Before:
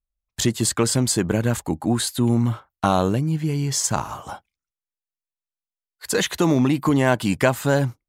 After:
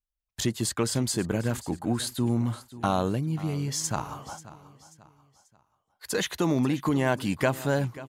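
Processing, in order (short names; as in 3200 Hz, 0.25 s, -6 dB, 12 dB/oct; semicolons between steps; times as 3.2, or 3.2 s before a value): bell 7800 Hz -4 dB 0.21 oct; feedback echo 0.537 s, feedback 39%, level -17 dB; gain -6.5 dB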